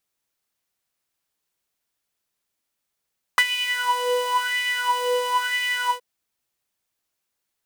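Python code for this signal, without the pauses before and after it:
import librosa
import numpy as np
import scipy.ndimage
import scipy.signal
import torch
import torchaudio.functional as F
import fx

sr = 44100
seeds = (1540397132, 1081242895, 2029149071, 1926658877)

y = fx.sub_patch_wobble(sr, seeds[0], note=83, wave='saw', wave2='square', interval_st=19, level2_db=-9.0, sub_db=-5.5, noise_db=-15, kind='highpass', cutoff_hz=870.0, q=6.9, env_oct=1.0, env_decay_s=0.32, env_sustain_pct=30, attack_ms=1.5, decay_s=0.05, sustain_db=-11.5, release_s=0.1, note_s=2.52, lfo_hz=1.0, wobble_oct=1.0)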